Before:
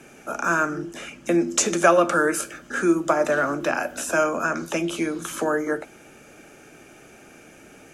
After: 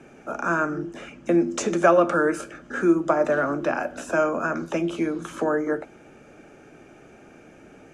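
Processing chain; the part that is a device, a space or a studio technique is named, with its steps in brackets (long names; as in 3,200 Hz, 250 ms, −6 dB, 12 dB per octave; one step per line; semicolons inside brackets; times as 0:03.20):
through cloth (low-pass filter 8,600 Hz 12 dB per octave; high-shelf EQ 2,100 Hz −11.5 dB)
level +1 dB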